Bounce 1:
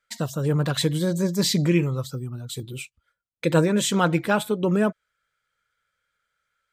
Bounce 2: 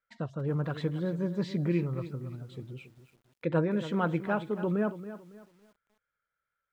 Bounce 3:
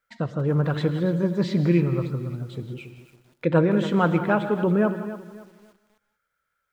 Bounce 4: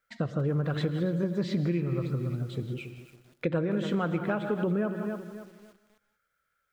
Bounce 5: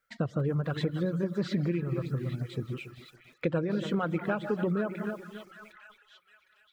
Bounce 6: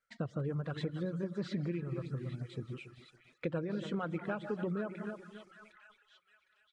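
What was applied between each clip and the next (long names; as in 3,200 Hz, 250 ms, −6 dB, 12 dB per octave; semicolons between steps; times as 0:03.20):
low-pass filter 1,900 Hz 12 dB per octave; feedback echo at a low word length 278 ms, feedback 35%, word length 8 bits, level −13 dB; level −8 dB
reverb whose tail is shaped and stops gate 210 ms rising, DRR 10.5 dB; level +8 dB
downward compressor 6 to 1, threshold −25 dBFS, peak gain reduction 11 dB; parametric band 930 Hz −7 dB 0.26 octaves
echo through a band-pass that steps 758 ms, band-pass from 1,600 Hz, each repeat 0.7 octaves, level −7 dB; reverb reduction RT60 0.59 s
downsampling to 22,050 Hz; level −7 dB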